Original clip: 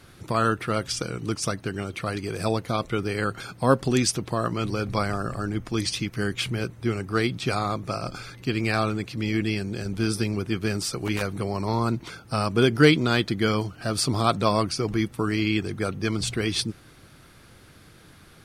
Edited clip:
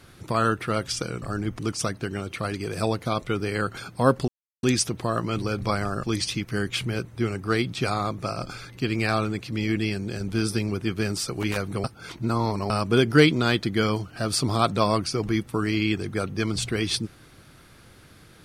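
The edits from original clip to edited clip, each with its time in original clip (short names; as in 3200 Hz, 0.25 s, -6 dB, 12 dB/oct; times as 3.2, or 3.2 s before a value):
3.91 insert silence 0.35 s
5.31–5.68 move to 1.22
11.49–12.35 reverse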